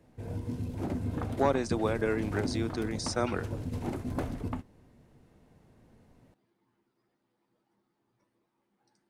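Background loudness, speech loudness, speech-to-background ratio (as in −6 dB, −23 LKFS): −36.5 LKFS, −32.0 LKFS, 4.5 dB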